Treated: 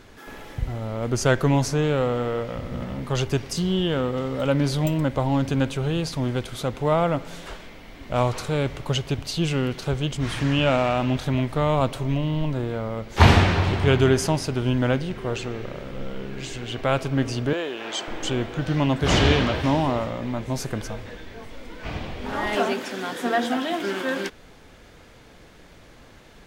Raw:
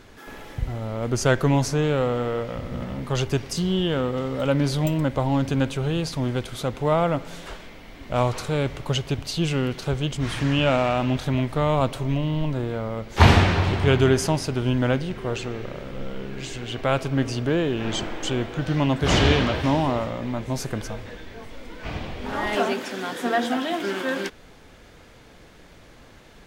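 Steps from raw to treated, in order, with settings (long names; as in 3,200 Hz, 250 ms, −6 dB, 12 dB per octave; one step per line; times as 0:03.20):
0:17.53–0:18.08: high-pass filter 500 Hz 12 dB per octave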